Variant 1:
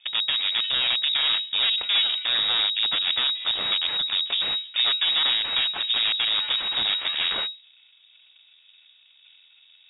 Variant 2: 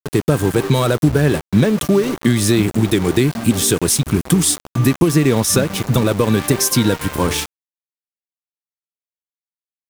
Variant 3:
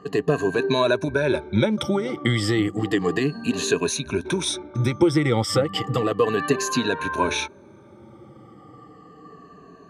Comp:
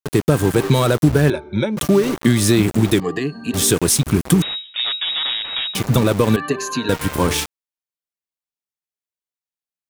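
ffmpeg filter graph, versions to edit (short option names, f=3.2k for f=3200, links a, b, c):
-filter_complex "[2:a]asplit=3[a][b][c];[1:a]asplit=5[d][e][f][g][h];[d]atrim=end=1.302[i];[a]atrim=start=1.298:end=1.772[j];[e]atrim=start=1.768:end=3.002[k];[b]atrim=start=2.998:end=3.542[l];[f]atrim=start=3.538:end=4.422[m];[0:a]atrim=start=4.418:end=5.752[n];[g]atrim=start=5.748:end=6.362[o];[c]atrim=start=6.358:end=6.892[p];[h]atrim=start=6.888[q];[i][j]acrossfade=d=0.004:c1=hsin:c2=hsin[r];[r][k]acrossfade=d=0.004:c1=hsin:c2=hsin[s];[s][l]acrossfade=d=0.004:c1=hsin:c2=hsin[t];[t][m]acrossfade=d=0.004:c1=hsin:c2=hsin[u];[u][n]acrossfade=d=0.004:c1=hsin:c2=hsin[v];[v][o]acrossfade=d=0.004:c1=hsin:c2=hsin[w];[w][p]acrossfade=d=0.004:c1=hsin:c2=hsin[x];[x][q]acrossfade=d=0.004:c1=hsin:c2=hsin"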